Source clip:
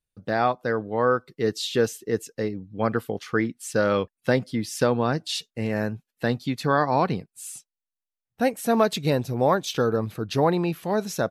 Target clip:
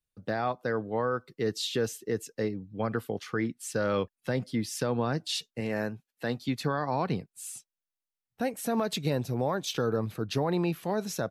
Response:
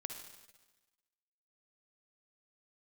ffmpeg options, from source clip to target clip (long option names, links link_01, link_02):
-filter_complex "[0:a]asettb=1/sr,asplit=3[link_01][link_02][link_03];[link_01]atrim=end=5.604[link_04];[link_02]atrim=start=5.6:end=6.48,asetpts=PTS-STARTPTS,afade=type=in:duration=0.004:curve=qsin,afade=type=out:start_time=0.876:duration=0.004:curve=qsin,lowshelf=frequency=150:gain=-9[link_05];[link_03]atrim=start=6.476[link_06];[link_04][link_05]acrossfade=duration=0.004:curve1=hsin:curve2=qsin[link_07];[link_07][link_06]acrossfade=duration=0.004:curve1=qsin:curve2=hsin,acrossover=split=130[link_08][link_09];[link_09]alimiter=limit=-16dB:level=0:latency=1:release=72[link_10];[link_08][link_10]amix=inputs=2:normalize=0,volume=-3dB"